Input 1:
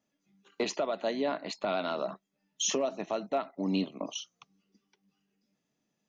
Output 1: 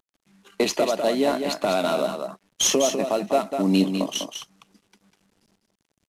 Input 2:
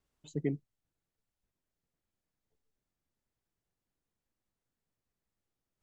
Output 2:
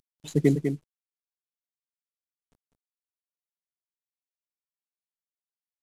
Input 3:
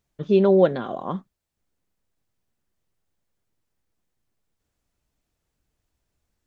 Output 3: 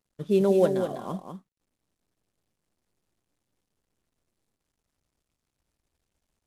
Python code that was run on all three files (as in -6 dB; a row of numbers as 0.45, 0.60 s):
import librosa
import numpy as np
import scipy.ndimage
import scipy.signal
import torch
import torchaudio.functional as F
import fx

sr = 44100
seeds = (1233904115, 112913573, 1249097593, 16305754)

p1 = fx.cvsd(x, sr, bps=64000)
p2 = p1 + fx.echo_single(p1, sr, ms=199, db=-7.0, dry=0)
p3 = fx.dynamic_eq(p2, sr, hz=1400.0, q=0.89, threshold_db=-40.0, ratio=4.0, max_db=-4)
y = librosa.util.normalize(p3) * 10.0 ** (-9 / 20.0)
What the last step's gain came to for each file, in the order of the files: +10.0, +12.0, -4.0 dB